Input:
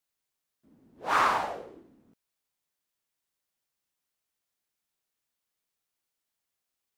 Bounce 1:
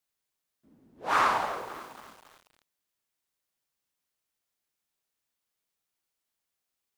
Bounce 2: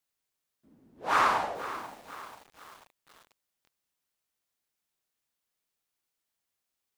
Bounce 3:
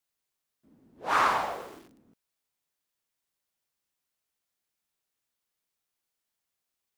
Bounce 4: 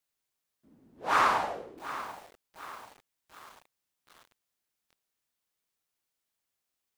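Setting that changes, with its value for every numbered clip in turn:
bit-crushed delay, time: 275 ms, 487 ms, 122 ms, 738 ms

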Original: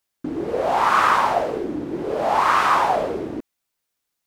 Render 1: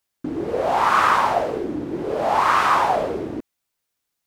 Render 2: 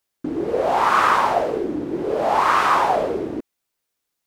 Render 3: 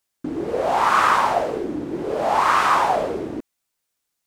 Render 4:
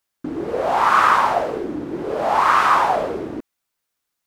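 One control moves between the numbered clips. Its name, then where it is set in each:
peaking EQ, frequency: 95 Hz, 410 Hz, 8.1 kHz, 1.3 kHz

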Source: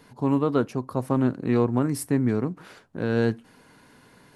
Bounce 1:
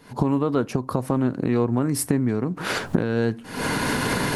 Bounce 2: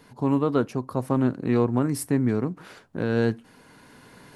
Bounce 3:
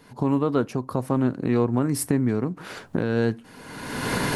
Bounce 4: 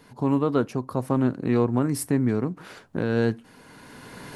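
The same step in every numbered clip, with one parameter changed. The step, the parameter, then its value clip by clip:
recorder AGC, rising by: 89 dB/s, 5.3 dB/s, 36 dB/s, 14 dB/s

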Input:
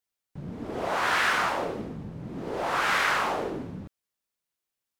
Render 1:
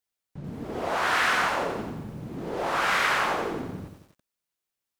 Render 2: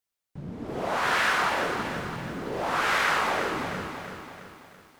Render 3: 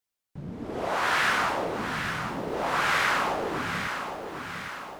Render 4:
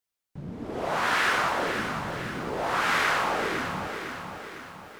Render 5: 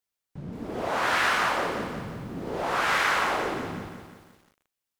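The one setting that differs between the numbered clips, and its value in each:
bit-crushed delay, time: 89 ms, 333 ms, 806 ms, 505 ms, 175 ms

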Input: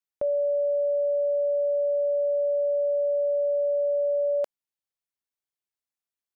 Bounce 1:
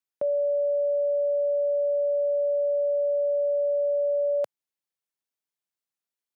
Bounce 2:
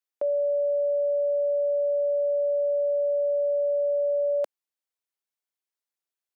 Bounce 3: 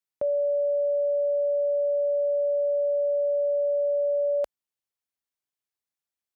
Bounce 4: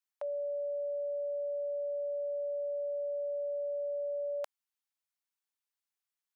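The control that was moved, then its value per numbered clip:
high-pass, cutoff frequency: 110 Hz, 290 Hz, 41 Hz, 780 Hz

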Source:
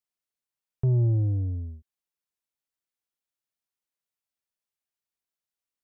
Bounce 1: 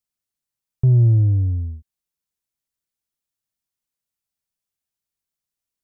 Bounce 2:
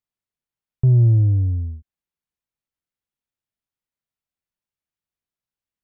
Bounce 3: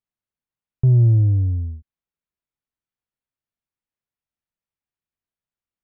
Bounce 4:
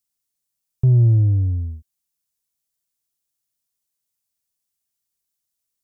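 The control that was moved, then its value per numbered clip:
tone controls, treble: +5 dB, -6 dB, -15 dB, +13 dB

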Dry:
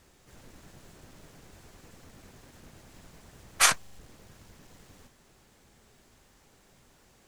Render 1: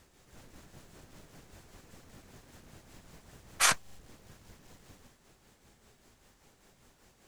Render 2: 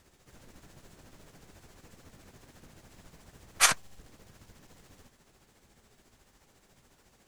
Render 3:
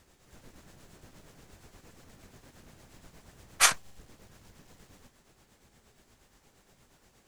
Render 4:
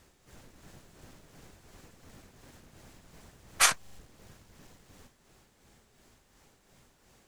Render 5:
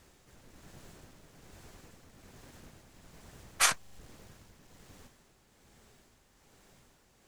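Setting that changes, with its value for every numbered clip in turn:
tremolo, rate: 5.1 Hz, 14 Hz, 8.5 Hz, 2.8 Hz, 1.2 Hz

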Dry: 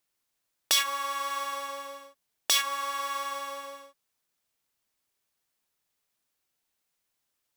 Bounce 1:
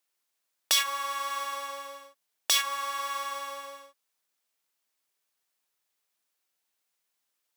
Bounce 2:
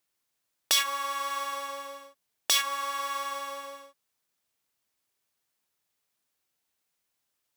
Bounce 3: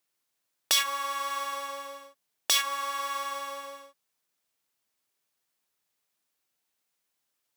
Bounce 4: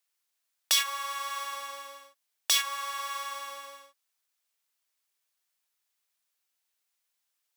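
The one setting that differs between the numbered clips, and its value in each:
high-pass, cutoff frequency: 420 Hz, 41 Hz, 130 Hz, 1.2 kHz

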